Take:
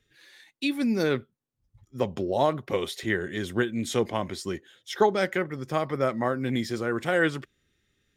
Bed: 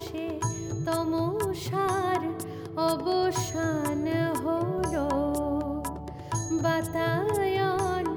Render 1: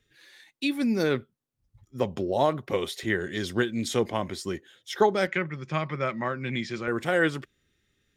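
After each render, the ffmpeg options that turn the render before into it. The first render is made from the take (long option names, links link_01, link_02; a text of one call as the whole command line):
ffmpeg -i in.wav -filter_complex "[0:a]asettb=1/sr,asplit=3[link_01][link_02][link_03];[link_01]atrim=end=3.194[link_04];[link_02]atrim=start=3.19:end=3.88,asetpts=PTS-STARTPTS,afade=type=in:duration=0.004:curve=qsin,afade=type=out:start_time=0.686:duration=0.004:curve=qsin,equalizer=frequency=4900:width_type=o:width=0.68:gain=10.5[link_05];[link_03]atrim=start=3.876[link_06];[link_04][link_05]acrossfade=duration=0.004:curve1=hsin:curve2=qsin[link_07];[link_07][link_06]acrossfade=duration=0.004:curve1=qsin:curve2=hsin,asettb=1/sr,asplit=3[link_08][link_09][link_10];[link_08]atrim=end=5.274[link_11];[link_09]atrim=start=5.27:end=6.88,asetpts=PTS-STARTPTS,afade=type=in:duration=0.004:curve=qsin,afade=type=out:start_time=1.606:duration=0.004:curve=qsin,highpass=130,equalizer=frequency=160:width_type=q:width=4:gain=7,equalizer=frequency=270:width_type=q:width=4:gain=-8,equalizer=frequency=460:width_type=q:width=4:gain=-8,equalizer=frequency=720:width_type=q:width=4:gain=-7,equalizer=frequency=2400:width_type=q:width=4:gain=8,equalizer=frequency=5200:width_type=q:width=4:gain=-4,lowpass=frequency=6400:width=0.5412,lowpass=frequency=6400:width=1.3066[link_12];[link_10]atrim=start=6.876[link_13];[link_11][link_12]acrossfade=duration=0.004:curve1=hsin:curve2=qsin[link_14];[link_14][link_13]acrossfade=duration=0.004:curve1=qsin:curve2=hsin" out.wav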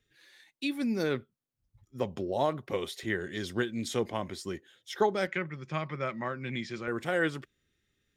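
ffmpeg -i in.wav -af "volume=-5dB" out.wav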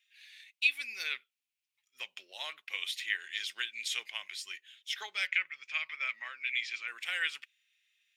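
ffmpeg -i in.wav -af "highpass=frequency=2500:width_type=q:width=3.8" out.wav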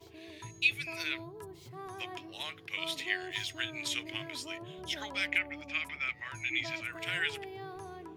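ffmpeg -i in.wav -i bed.wav -filter_complex "[1:a]volume=-18dB[link_01];[0:a][link_01]amix=inputs=2:normalize=0" out.wav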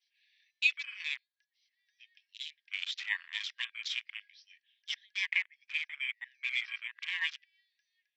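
ffmpeg -i in.wav -af "afftfilt=real='re*between(b*sr/4096,1600,6100)':imag='im*between(b*sr/4096,1600,6100)':win_size=4096:overlap=0.75,afwtdn=0.01" out.wav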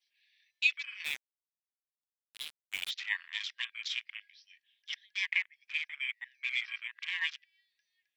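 ffmpeg -i in.wav -filter_complex "[0:a]asplit=3[link_01][link_02][link_03];[link_01]afade=type=out:start_time=1.04:duration=0.02[link_04];[link_02]acrusher=bits=5:mix=0:aa=0.5,afade=type=in:start_time=1.04:duration=0.02,afade=type=out:start_time=2.89:duration=0.02[link_05];[link_03]afade=type=in:start_time=2.89:duration=0.02[link_06];[link_04][link_05][link_06]amix=inputs=3:normalize=0,asettb=1/sr,asplit=3[link_07][link_08][link_09];[link_07]atrim=end=4.114[link_10];[link_08]atrim=start=4.11:end=4.93,asetpts=PTS-STARTPTS,afade=type=in:duration=0.004:curve=qsin,afade=type=out:start_time=0.816:duration=0.004:curve=qsin,acrossover=split=3600[link_11][link_12];[link_12]acompressor=threshold=-55dB:ratio=4:attack=1:release=60[link_13];[link_11][link_13]amix=inputs=2:normalize=0[link_14];[link_09]atrim=start=4.926[link_15];[link_10][link_14]acrossfade=duration=0.004:curve1=hsin:curve2=qsin[link_16];[link_16][link_15]acrossfade=duration=0.004:curve1=qsin:curve2=hsin" out.wav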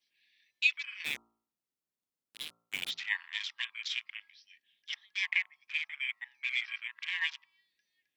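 ffmpeg -i in.wav -af "equalizer=frequency=230:width_type=o:width=2.4:gain=12.5,bandreject=frequency=56.68:width_type=h:width=4,bandreject=frequency=113.36:width_type=h:width=4,bandreject=frequency=170.04:width_type=h:width=4,bandreject=frequency=226.72:width_type=h:width=4,bandreject=frequency=283.4:width_type=h:width=4,bandreject=frequency=340.08:width_type=h:width=4,bandreject=frequency=396.76:width_type=h:width=4,bandreject=frequency=453.44:width_type=h:width=4,bandreject=frequency=510.12:width_type=h:width=4,bandreject=frequency=566.8:width_type=h:width=4,bandreject=frequency=623.48:width_type=h:width=4,bandreject=frequency=680.16:width_type=h:width=4,bandreject=frequency=736.84:width_type=h:width=4,bandreject=frequency=793.52:width_type=h:width=4,bandreject=frequency=850.2:width_type=h:width=4,bandreject=frequency=906.88:width_type=h:width=4,bandreject=frequency=963.56:width_type=h:width=4,bandreject=frequency=1020.24:width_type=h:width=4,bandreject=frequency=1076.92:width_type=h:width=4,bandreject=frequency=1133.6:width_type=h:width=4,bandreject=frequency=1190.28:width_type=h:width=4,bandreject=frequency=1246.96:width_type=h:width=4,bandreject=frequency=1303.64:width_type=h:width=4,bandreject=frequency=1360.32:width_type=h:width=4" out.wav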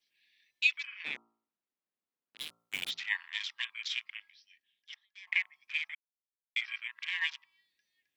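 ffmpeg -i in.wav -filter_complex "[0:a]asettb=1/sr,asplit=3[link_01][link_02][link_03];[link_01]atrim=end=0.874[link_04];[link_02]atrim=start=0.87:end=2.38,asetpts=PTS-STARTPTS,afade=type=in:duration=0.004:curve=qsin,afade=type=out:start_time=1.506:duration=0.004:curve=qsin,highpass=170,lowpass=2800[link_05];[link_03]atrim=start=2.376[link_06];[link_04][link_05]acrossfade=duration=0.004:curve1=hsin:curve2=qsin[link_07];[link_07][link_06]acrossfade=duration=0.004:curve1=qsin:curve2=hsin,asplit=4[link_08][link_09][link_10][link_11];[link_08]atrim=end=5.27,asetpts=PTS-STARTPTS,afade=type=out:start_time=4.09:duration=1.18:silence=0.0707946[link_12];[link_09]atrim=start=5.27:end=5.95,asetpts=PTS-STARTPTS,afade=type=in:duration=0.004:curve=hsin:silence=0.0707946,afade=type=out:start_time=0.676:duration=0.004:curve=hsin[link_13];[link_10]atrim=start=5.95:end=6.56,asetpts=PTS-STARTPTS,volume=0[link_14];[link_11]atrim=start=6.56,asetpts=PTS-STARTPTS,afade=type=in:duration=0.004:curve=hsin[link_15];[link_12][link_13][link_14][link_15]concat=n=4:v=0:a=1" out.wav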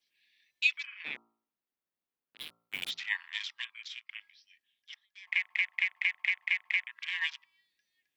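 ffmpeg -i in.wav -filter_complex "[0:a]asettb=1/sr,asplit=3[link_01][link_02][link_03];[link_01]atrim=end=0.864[link_04];[link_02]atrim=start=0.86:end=2.82,asetpts=PTS-STARTPTS,afade=type=in:duration=0.004:curve=qsin,afade=type=out:start_time=1.956:duration=0.004:curve=qsin,equalizer=frequency=6900:width_type=o:width=0.88:gain=-11.5[link_05];[link_03]atrim=start=2.816[link_06];[link_04][link_05]acrossfade=duration=0.004:curve1=hsin:curve2=qsin[link_07];[link_07][link_06]acrossfade=duration=0.004:curve1=qsin:curve2=hsin,asplit=9[link_08][link_09][link_10][link_11][link_12][link_13][link_14][link_15][link_16];[link_08]atrim=end=4.09,asetpts=PTS-STARTPTS,afade=type=out:start_time=3.38:duration=0.71:silence=0.211349[link_17];[link_09]atrim=start=4.09:end=5.492,asetpts=PTS-STARTPTS,afade=type=in:duration=0.004:curve=hsin:silence=0.211349[link_18];[link_10]atrim=start=5.258:end=5.492[link_19];[link_11]atrim=start=5.258:end=5.492[link_20];[link_12]atrim=start=5.258:end=5.492[link_21];[link_13]atrim=start=5.258:end=5.492[link_22];[link_14]atrim=start=5.258:end=5.492[link_23];[link_15]atrim=start=5.258:end=5.492[link_24];[link_16]atrim=start=6.868[link_25];[link_17][link_18]concat=n=2:v=0:a=1[link_26];[link_26][link_19]acrossfade=duration=0.004:curve1=hsin:curve2=hsin[link_27];[link_27][link_20]acrossfade=duration=0.004:curve1=hsin:curve2=hsin[link_28];[link_28][link_21]acrossfade=duration=0.004:curve1=hsin:curve2=hsin[link_29];[link_29][link_22]acrossfade=duration=0.004:curve1=hsin:curve2=hsin[link_30];[link_30][link_23]acrossfade=duration=0.004:curve1=hsin:curve2=hsin[link_31];[link_31][link_24]acrossfade=duration=0.004:curve1=hsin:curve2=hsin[link_32];[link_32][link_25]acrossfade=duration=0.004:curve1=hsin:curve2=hsin" out.wav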